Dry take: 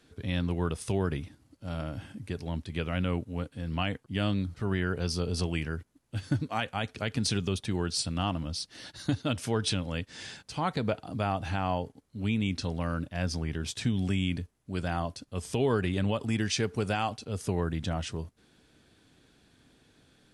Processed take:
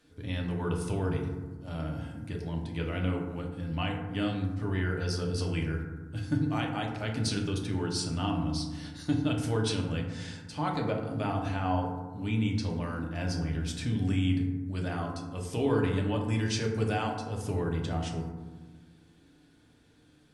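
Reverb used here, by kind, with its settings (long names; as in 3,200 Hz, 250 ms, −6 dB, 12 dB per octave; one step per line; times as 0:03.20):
feedback delay network reverb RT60 1.3 s, low-frequency decay 1.55×, high-frequency decay 0.35×, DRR 0 dB
level −4.5 dB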